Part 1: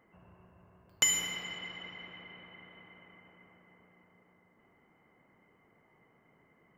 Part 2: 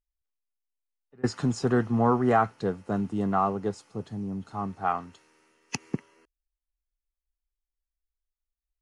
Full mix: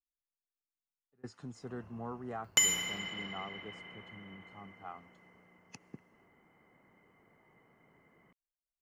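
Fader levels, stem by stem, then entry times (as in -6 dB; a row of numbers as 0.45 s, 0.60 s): +0.5 dB, -19.5 dB; 1.55 s, 0.00 s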